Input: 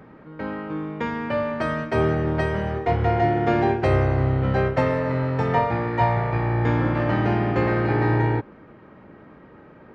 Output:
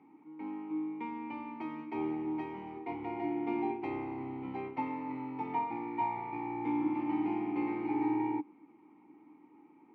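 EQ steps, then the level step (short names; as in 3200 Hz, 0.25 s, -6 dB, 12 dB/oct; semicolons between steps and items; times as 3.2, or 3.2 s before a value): vowel filter u; low shelf 62 Hz -5.5 dB; low shelf 220 Hz -7.5 dB; 0.0 dB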